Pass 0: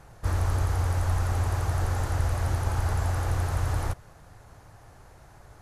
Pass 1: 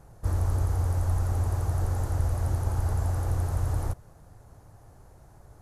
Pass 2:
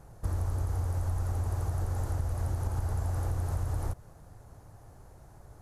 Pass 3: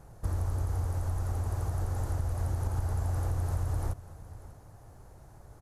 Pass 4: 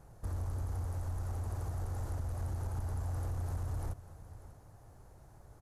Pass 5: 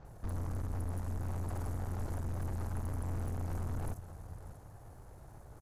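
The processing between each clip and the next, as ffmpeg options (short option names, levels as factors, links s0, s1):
-af "equalizer=f=2500:w=0.47:g=-11"
-af "acompressor=threshold=0.0447:ratio=6"
-af "aecho=1:1:592:0.133"
-af "asoftclip=type=tanh:threshold=0.0596,volume=0.596"
-filter_complex "[0:a]aeval=exprs='(tanh(126*val(0)+0.6)-tanh(0.6))/126':c=same,acrossover=split=5500[s0][s1];[s1]adelay=50[s2];[s0][s2]amix=inputs=2:normalize=0,volume=2.24"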